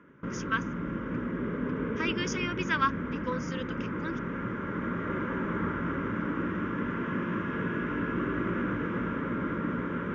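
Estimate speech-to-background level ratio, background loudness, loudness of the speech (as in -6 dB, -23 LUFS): -0.5 dB, -33.0 LUFS, -33.5 LUFS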